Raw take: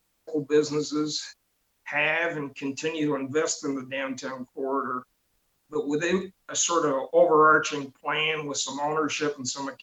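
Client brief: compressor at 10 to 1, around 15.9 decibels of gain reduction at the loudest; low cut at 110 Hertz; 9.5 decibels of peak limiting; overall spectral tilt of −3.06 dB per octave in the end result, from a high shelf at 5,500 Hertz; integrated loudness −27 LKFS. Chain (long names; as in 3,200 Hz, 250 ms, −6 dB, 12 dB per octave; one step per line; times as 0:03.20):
high-pass filter 110 Hz
high-shelf EQ 5,500 Hz +6.5 dB
downward compressor 10 to 1, threshold −30 dBFS
level +10.5 dB
brickwall limiter −17.5 dBFS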